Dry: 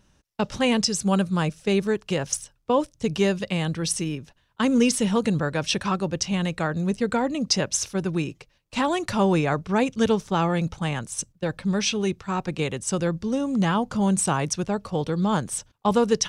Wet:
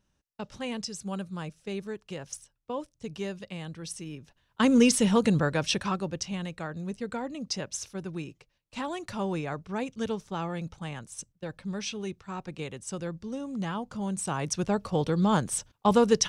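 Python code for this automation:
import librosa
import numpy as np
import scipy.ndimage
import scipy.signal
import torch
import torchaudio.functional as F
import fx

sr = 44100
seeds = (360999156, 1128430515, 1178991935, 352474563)

y = fx.gain(x, sr, db=fx.line((4.01, -13.0), (4.61, -0.5), (5.44, -0.5), (6.53, -10.5), (14.18, -10.5), (14.68, -1.0)))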